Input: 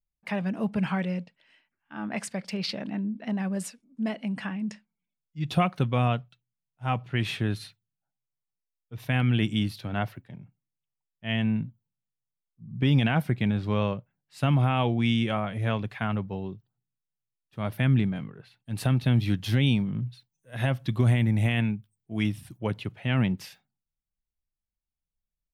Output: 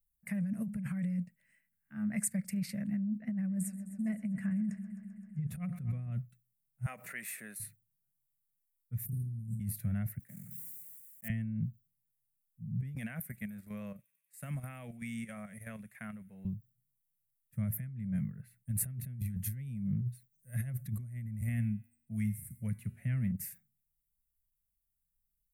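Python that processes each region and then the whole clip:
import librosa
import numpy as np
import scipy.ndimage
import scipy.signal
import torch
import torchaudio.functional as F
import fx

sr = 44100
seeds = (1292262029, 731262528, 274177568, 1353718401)

y = fx.chain(x, sr, fx.high_shelf(hz=3500.0, db=-11.0),
    fx.echo_heads(ms=130, heads='first and second', feedback_pct=67, wet_db=-20), at=(3.18, 6.12))
y = fx.chain(y, sr, fx.highpass(hz=380.0, slope=24),
    fx.notch(hz=3200.0, q=17.0),
    fx.pre_swell(db_per_s=75.0), at=(6.86, 7.6))
y = fx.chain(y, sr, fx.cheby2_bandstop(low_hz=610.0, high_hz=3000.0, order=4, stop_db=60),
    fx.room_flutter(wall_m=4.6, rt60_s=0.48), at=(9.06, 9.6))
y = fx.chain(y, sr, fx.block_float(bits=5),
    fx.highpass(hz=290.0, slope=12),
    fx.sustainer(db_per_s=24.0), at=(10.19, 11.3))
y = fx.chain(y, sr, fx.highpass(hz=370.0, slope=12),
    fx.level_steps(step_db=11),
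    fx.echo_wet_highpass(ms=94, feedback_pct=77, hz=5300.0, wet_db=-16.0), at=(12.95, 16.45))
y = fx.chain(y, sr, fx.comb_fb(f0_hz=79.0, decay_s=0.6, harmonics='odd', damping=0.0, mix_pct=60),
    fx.band_squash(depth_pct=40), at=(21.41, 23.32))
y = fx.curve_eq(y, sr, hz=(130.0, 210.0, 330.0, 600.0, 870.0, 2000.0, 3200.0, 5300.0, 8000.0, 13000.0), db=(0, -1, -27, -16, -28, -8, -28, -17, 3, 11))
y = fx.over_compress(y, sr, threshold_db=-33.0, ratio=-1.0)
y = y * librosa.db_to_amplitude(-2.0)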